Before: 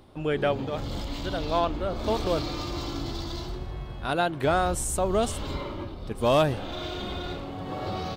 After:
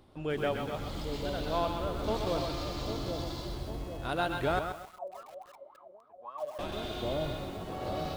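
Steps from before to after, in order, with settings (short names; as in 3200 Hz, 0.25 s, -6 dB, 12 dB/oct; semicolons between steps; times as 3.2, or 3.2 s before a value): split-band echo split 770 Hz, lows 0.798 s, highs 0.121 s, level -6 dB; 4.59–6.59 wah 3.6 Hz 550–1300 Hz, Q 16; lo-fi delay 0.131 s, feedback 35%, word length 7-bit, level -7 dB; gain -6.5 dB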